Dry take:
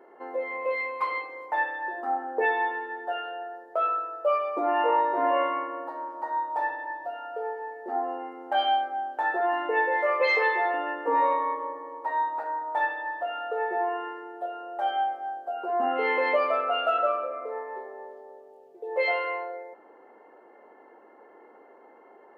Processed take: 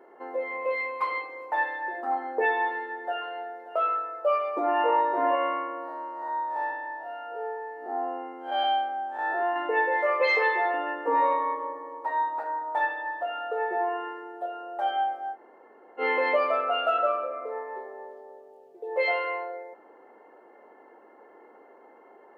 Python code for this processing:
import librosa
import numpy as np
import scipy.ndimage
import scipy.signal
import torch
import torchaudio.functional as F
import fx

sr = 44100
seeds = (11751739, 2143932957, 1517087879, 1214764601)

y = fx.echo_throw(x, sr, start_s=0.84, length_s=0.68, ms=550, feedback_pct=80, wet_db=-18.0)
y = fx.echo_throw(y, sr, start_s=2.79, length_s=0.73, ms=580, feedback_pct=70, wet_db=-16.0)
y = fx.spec_blur(y, sr, span_ms=123.0, at=(5.35, 9.56))
y = fx.edit(y, sr, fx.room_tone_fill(start_s=15.34, length_s=0.66, crossfade_s=0.06), tone=tone)